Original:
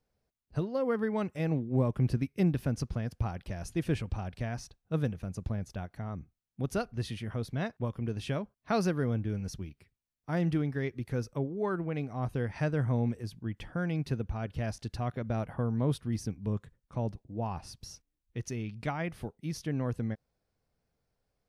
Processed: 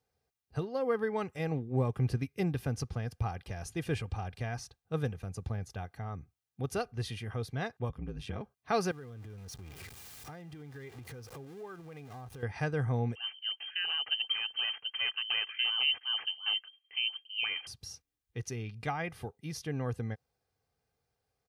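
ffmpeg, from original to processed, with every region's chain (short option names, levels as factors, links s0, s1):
-filter_complex "[0:a]asettb=1/sr,asplit=3[s0][s1][s2];[s0]atrim=end=7.894[s3];[s1]atrim=start=7.89:end=8.41,asetpts=PTS-STARTPTS,afade=t=in:d=0.004:c=qsin,afade=t=out:st=0.516:d=0.004:c=qsin,bass=f=250:g=7,treble=f=4000:g=-5,acompressor=threshold=0.0398:ratio=4:attack=3.2:release=140:knee=1:detection=peak,aeval=exprs='val(0)*sin(2*PI*50*n/s)':c=same[s4];[s2]atrim=start=8.406[s5];[s3][s4]acrossfade=d=0.004:c1=hsin:c2=qsin[s6];[s6][s5]acrossfade=d=0.004:c1=qsin:c2=hsin,asettb=1/sr,asplit=3[s7][s8][s9];[s7]atrim=end=8.914[s10];[s8]atrim=start=8.91:end=12.43,asetpts=PTS-STARTPTS,afade=t=in:d=0.004:c=qsin,afade=t=out:st=3.516:d=0.004:c=qsin,aeval=exprs='val(0)+0.5*0.00891*sgn(val(0))':c=same,acompressor=threshold=0.00794:ratio=5:attack=3.2:release=140:knee=1:detection=peak[s11];[s9]atrim=start=12.426[s12];[s10][s11]acrossfade=d=0.004:c1=hsin:c2=qsin[s13];[s13][s12]acrossfade=d=0.004:c1=qsin:c2=hsin,asettb=1/sr,asplit=3[s14][s15][s16];[s14]atrim=end=13.154[s17];[s15]atrim=start=13.15:end=17.67,asetpts=PTS-STARTPTS,afade=t=in:d=0.004:c=qsin,afade=t=out:st=4.516:d=0.004:c=qsin,acrusher=samples=13:mix=1:aa=0.000001:lfo=1:lforange=20.8:lforate=2.8,lowpass=f=2700:t=q:w=0.5098,lowpass=f=2700:t=q:w=0.6013,lowpass=f=2700:t=q:w=0.9,lowpass=f=2700:t=q:w=2.563,afreqshift=-3200[s18];[s16]atrim=start=17.666[s19];[s17][s18]acrossfade=d=0.004:c1=hsin:c2=qsin[s20];[s20][s19]acrossfade=d=0.004:c1=qsin:c2=hsin,highpass=84,equalizer=f=330:w=2.8:g=-8,aecho=1:1:2.5:0.5"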